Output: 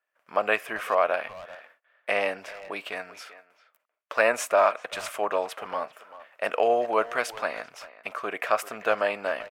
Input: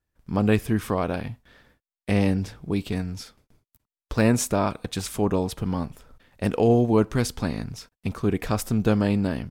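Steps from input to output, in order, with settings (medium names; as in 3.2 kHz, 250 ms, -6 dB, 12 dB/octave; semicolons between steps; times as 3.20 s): resonant high-pass 620 Hz, resonance Q 4.9; high-order bell 1.8 kHz +11.5 dB; speakerphone echo 390 ms, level -15 dB; trim -6 dB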